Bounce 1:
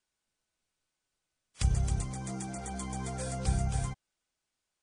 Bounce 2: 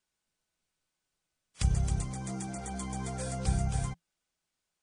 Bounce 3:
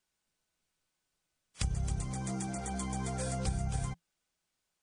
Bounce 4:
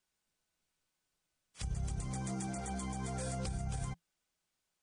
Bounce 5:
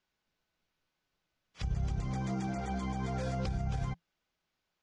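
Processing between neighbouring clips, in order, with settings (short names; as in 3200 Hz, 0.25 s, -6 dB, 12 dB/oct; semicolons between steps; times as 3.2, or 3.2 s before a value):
bell 170 Hz +6 dB 0.2 oct
compressor 6:1, threshold -30 dBFS, peak gain reduction 9 dB; gain +1 dB
limiter -28 dBFS, peak gain reduction 8.5 dB; gain -1.5 dB
running mean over 5 samples; gain +4.5 dB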